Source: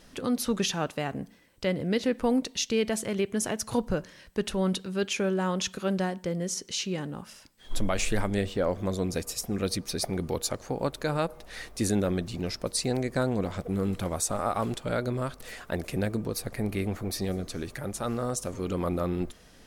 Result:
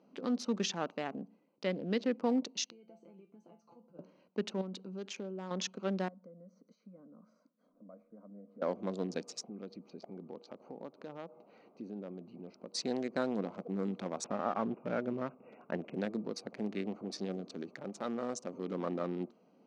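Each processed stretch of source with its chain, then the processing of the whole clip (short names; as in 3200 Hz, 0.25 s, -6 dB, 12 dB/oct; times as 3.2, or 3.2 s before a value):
2.7–3.99 auto swell 0.101 s + compressor 8:1, threshold -33 dBFS + resonator 170 Hz, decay 0.23 s, mix 90%
4.61–5.51 compressor 3:1, threshold -33 dBFS + high shelf 10000 Hz +9 dB
6.08–8.62 treble ducked by the level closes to 1200 Hz, closed at -24 dBFS + compressor 2.5:1, threshold -46 dBFS + fixed phaser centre 560 Hz, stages 8
9.43–12.74 LPF 4100 Hz + compressor 2:1, threshold -41 dBFS
14.24–15.94 CVSD 64 kbps + brick-wall FIR low-pass 2900 Hz + low shelf 130 Hz +11 dB
whole clip: Wiener smoothing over 25 samples; elliptic band-pass 200–6200 Hz, stop band 50 dB; gain -5 dB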